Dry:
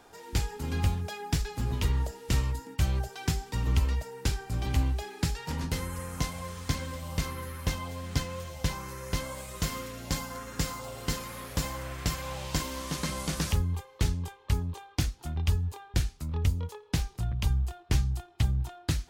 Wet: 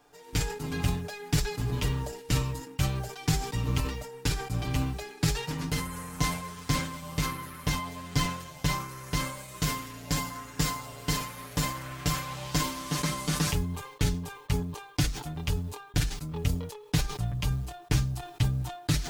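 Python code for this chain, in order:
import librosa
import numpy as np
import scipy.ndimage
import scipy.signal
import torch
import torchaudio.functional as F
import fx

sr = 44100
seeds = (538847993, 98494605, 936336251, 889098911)

y = fx.law_mismatch(x, sr, coded='A')
y = y + 0.85 * np.pad(y, (int(6.8 * sr / 1000.0), 0))[:len(y)]
y = fx.sustainer(y, sr, db_per_s=81.0)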